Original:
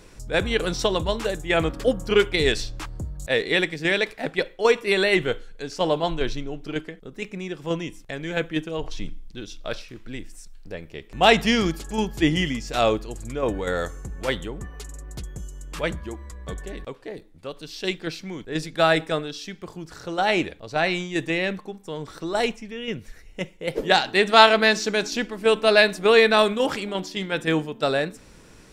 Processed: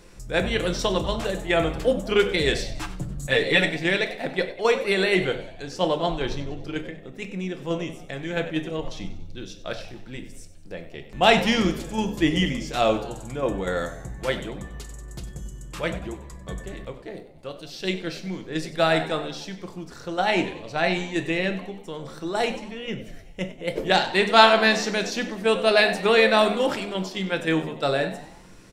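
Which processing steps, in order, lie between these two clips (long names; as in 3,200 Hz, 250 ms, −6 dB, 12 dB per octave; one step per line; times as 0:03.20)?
0:02.69–0:03.77: comb filter 6.9 ms, depth 97%
echo with shifted repeats 95 ms, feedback 50%, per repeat +74 Hz, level −15 dB
rectangular room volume 360 cubic metres, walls furnished, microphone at 0.85 metres
level −2 dB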